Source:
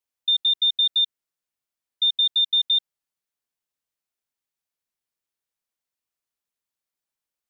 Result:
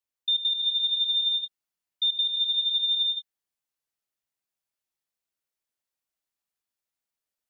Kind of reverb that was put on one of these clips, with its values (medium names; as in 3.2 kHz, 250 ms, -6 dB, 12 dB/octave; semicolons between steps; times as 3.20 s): gated-style reverb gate 440 ms rising, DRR -0.5 dB; trim -4.5 dB